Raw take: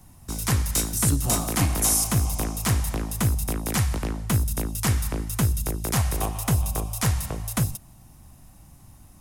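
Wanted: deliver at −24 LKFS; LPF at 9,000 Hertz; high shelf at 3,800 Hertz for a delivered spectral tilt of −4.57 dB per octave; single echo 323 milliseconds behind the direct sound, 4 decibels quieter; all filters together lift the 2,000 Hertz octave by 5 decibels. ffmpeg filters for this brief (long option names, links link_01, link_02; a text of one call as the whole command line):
ffmpeg -i in.wav -af "lowpass=9000,equalizer=frequency=2000:width_type=o:gain=7,highshelf=frequency=3800:gain=-3.5,aecho=1:1:323:0.631,volume=0.5dB" out.wav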